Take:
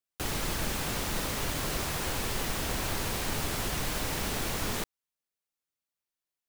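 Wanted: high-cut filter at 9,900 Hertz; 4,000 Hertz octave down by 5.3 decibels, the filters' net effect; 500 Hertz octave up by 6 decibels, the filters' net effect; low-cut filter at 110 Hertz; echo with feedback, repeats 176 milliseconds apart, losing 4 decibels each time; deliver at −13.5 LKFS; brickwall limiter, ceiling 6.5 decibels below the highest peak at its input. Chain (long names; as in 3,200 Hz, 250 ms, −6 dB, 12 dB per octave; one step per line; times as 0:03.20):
high-pass filter 110 Hz
low-pass filter 9,900 Hz
parametric band 500 Hz +7.5 dB
parametric band 4,000 Hz −7 dB
brickwall limiter −26.5 dBFS
repeating echo 176 ms, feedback 63%, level −4 dB
level +20 dB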